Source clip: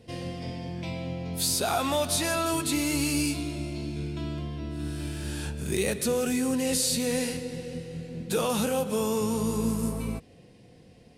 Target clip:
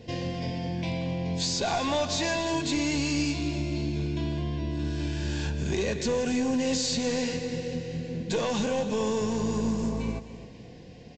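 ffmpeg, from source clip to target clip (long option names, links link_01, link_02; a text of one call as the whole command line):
ffmpeg -i in.wav -af "acompressor=threshold=-40dB:ratio=1.5,aresample=16000,aeval=exprs='clip(val(0),-1,0.0282)':channel_layout=same,aresample=44100,asuperstop=centerf=1300:order=20:qfactor=7.2,aecho=1:1:258|516|774|1032:0.2|0.0778|0.0303|0.0118,volume=6.5dB" out.wav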